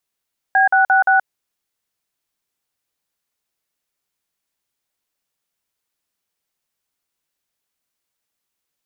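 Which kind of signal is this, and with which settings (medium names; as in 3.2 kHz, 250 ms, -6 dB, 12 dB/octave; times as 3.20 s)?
DTMF "B666", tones 126 ms, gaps 48 ms, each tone -13 dBFS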